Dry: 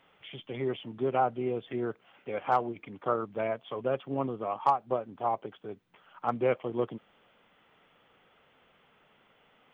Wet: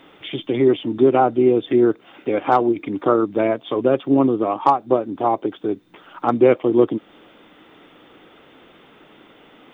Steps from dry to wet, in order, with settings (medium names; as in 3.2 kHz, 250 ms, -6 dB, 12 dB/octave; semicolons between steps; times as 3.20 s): in parallel at -2 dB: compression, threshold -42 dBFS, peak gain reduction 21 dB; on the sum: small resonant body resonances 310/3600 Hz, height 14 dB, ringing for 35 ms; trim +8 dB